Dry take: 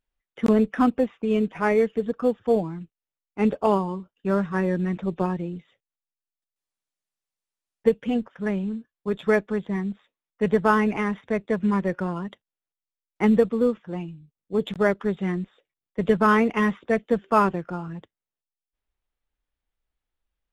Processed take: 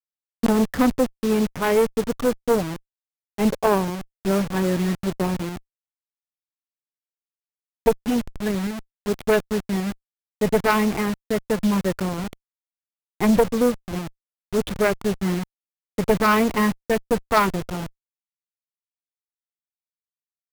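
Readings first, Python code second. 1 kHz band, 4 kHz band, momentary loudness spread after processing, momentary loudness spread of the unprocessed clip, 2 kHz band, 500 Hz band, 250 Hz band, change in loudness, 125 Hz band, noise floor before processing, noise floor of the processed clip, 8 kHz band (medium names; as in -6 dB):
+1.5 dB, +9.5 dB, 13 LU, 14 LU, +1.5 dB, +1.5 dB, +1.5 dB, +1.5 dB, +2.0 dB, under -85 dBFS, under -85 dBFS, no reading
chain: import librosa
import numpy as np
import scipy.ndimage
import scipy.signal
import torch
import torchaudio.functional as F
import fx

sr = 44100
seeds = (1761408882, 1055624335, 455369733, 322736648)

y = fx.delta_hold(x, sr, step_db=-28.0)
y = fx.cheby_harmonics(y, sr, harmonics=(4, 5, 6), levels_db=(-9, -20, -20), full_scale_db=-5.5)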